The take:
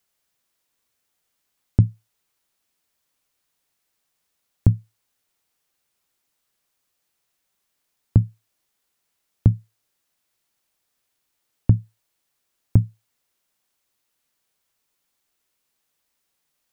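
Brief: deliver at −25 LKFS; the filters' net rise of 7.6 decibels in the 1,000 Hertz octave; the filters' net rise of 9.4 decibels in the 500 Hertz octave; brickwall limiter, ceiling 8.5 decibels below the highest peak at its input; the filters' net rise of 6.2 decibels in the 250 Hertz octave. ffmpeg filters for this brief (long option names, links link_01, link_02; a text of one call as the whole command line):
ffmpeg -i in.wav -af "equalizer=frequency=250:width_type=o:gain=7,equalizer=frequency=500:width_type=o:gain=8.5,equalizer=frequency=1000:width_type=o:gain=6,volume=1.5dB,alimiter=limit=-4.5dB:level=0:latency=1" out.wav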